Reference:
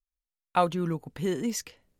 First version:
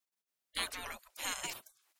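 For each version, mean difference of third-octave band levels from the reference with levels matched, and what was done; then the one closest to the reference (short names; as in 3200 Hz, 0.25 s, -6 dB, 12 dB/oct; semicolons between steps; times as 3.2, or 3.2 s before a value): 16.5 dB: spectral gate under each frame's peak -30 dB weak; bell 71 Hz -14.5 dB 0.51 oct; gain +10 dB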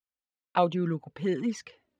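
5.0 dB: envelope flanger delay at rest 3.9 ms, full sweep at -22 dBFS; BPF 140–3600 Hz; gain +2.5 dB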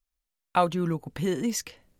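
1.0 dB: notch 420 Hz, Q 12; in parallel at +0.5 dB: compressor, threshold -39 dBFS, peak gain reduction 19.5 dB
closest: third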